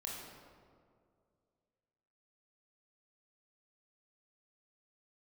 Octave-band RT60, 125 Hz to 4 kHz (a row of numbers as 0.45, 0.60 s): 2.5, 2.4, 2.5, 2.0, 1.4, 1.1 s